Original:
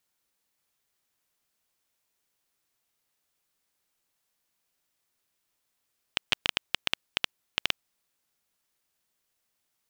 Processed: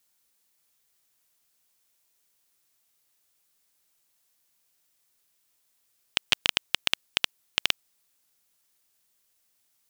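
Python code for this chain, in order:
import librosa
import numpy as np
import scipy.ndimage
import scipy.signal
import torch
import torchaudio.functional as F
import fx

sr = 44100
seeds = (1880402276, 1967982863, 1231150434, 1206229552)

y = fx.high_shelf(x, sr, hz=4000.0, db=8.0)
y = y * 10.0 ** (1.0 / 20.0)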